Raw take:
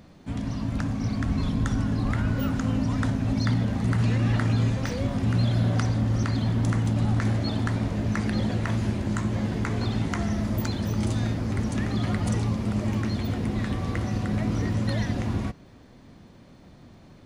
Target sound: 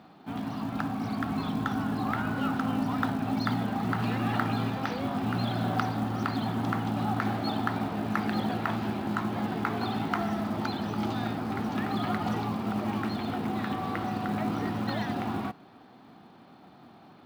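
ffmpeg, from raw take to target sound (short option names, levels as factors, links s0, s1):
-af "highpass=210,equalizer=f=540:t=q:w=4:g=-7,equalizer=f=780:t=q:w=4:g=10,equalizer=f=1300:t=q:w=4:g=6,equalizer=f=2000:t=q:w=4:g=-4,lowpass=f=4300:w=0.5412,lowpass=f=4300:w=1.3066,acrusher=bits=7:mode=log:mix=0:aa=0.000001"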